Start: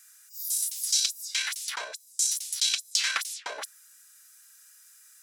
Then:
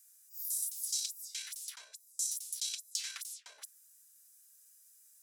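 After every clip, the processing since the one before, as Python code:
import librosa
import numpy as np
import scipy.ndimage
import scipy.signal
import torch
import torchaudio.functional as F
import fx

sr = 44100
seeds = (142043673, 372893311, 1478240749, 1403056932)

y = scipy.signal.lfilter([1.0, -0.9], [1.0], x)
y = F.gain(torch.from_numpy(y), -8.5).numpy()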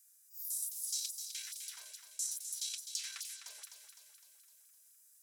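y = fx.echo_feedback(x, sr, ms=255, feedback_pct=55, wet_db=-8.5)
y = F.gain(torch.from_numpy(y), -3.0).numpy()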